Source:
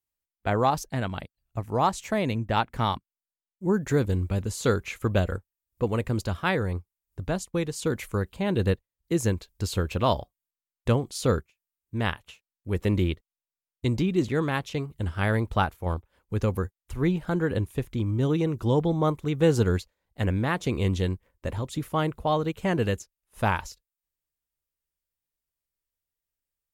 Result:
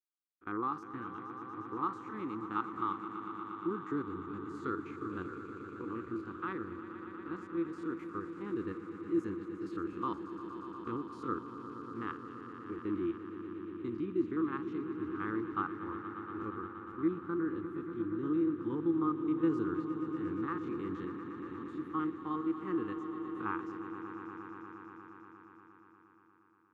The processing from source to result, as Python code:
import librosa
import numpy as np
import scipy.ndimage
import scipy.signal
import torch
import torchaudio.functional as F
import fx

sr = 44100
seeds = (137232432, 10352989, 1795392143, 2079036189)

p1 = fx.spec_steps(x, sr, hold_ms=50)
p2 = fx.double_bandpass(p1, sr, hz=630.0, octaves=1.9)
p3 = fx.notch(p2, sr, hz=640.0, q=12.0)
y = p3 + fx.echo_swell(p3, sr, ms=118, loudest=5, wet_db=-13.0, dry=0)